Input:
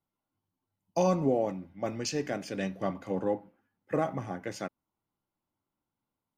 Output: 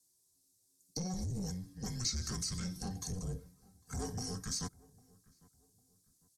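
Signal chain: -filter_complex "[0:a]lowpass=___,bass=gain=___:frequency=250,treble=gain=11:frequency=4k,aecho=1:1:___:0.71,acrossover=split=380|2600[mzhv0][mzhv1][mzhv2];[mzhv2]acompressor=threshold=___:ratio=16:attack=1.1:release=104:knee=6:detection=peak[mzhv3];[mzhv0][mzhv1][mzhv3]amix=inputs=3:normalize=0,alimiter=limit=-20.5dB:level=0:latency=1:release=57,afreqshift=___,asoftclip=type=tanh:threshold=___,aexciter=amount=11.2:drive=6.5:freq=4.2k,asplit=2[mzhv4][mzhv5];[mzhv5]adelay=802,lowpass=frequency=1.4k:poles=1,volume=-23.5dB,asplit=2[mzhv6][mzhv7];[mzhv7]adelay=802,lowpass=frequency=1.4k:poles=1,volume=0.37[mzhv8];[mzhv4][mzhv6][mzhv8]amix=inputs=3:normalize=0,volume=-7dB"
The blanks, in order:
8.6k, 8, 3.6, -47dB, -370, -26.5dB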